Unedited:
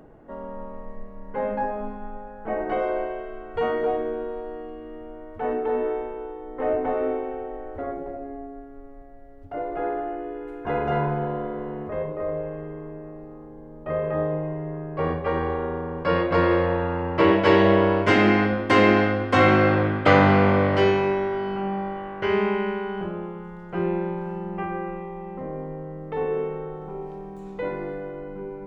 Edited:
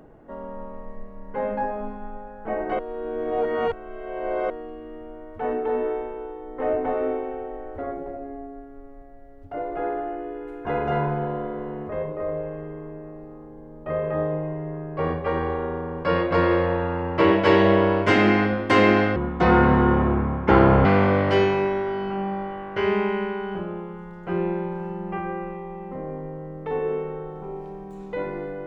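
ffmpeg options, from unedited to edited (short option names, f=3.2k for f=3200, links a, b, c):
-filter_complex "[0:a]asplit=5[a][b][c][d][e];[a]atrim=end=2.792[f];[b]atrim=start=2.788:end=4.502,asetpts=PTS-STARTPTS,areverse[g];[c]atrim=start=4.498:end=19.164[h];[d]atrim=start=19.16:end=20.31,asetpts=PTS-STARTPTS,asetrate=29988,aresample=44100[i];[e]atrim=start=20.306[j];[f][g]acrossfade=d=0.004:c1=hsin:c2=hsin[k];[k][h]acrossfade=d=0.004:c1=hsin:c2=hsin[l];[l][i]acrossfade=d=0.004:c1=hsin:c2=hsin[m];[m][j]acrossfade=d=0.004:c1=hsin:c2=hsin"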